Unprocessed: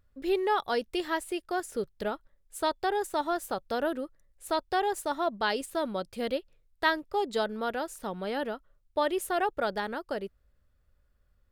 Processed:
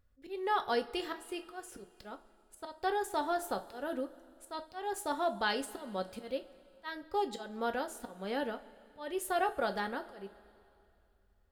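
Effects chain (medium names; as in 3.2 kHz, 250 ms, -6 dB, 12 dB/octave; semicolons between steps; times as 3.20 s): slow attack 250 ms; two-slope reverb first 0.25 s, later 2.7 s, from -20 dB, DRR 6 dB; trim -4 dB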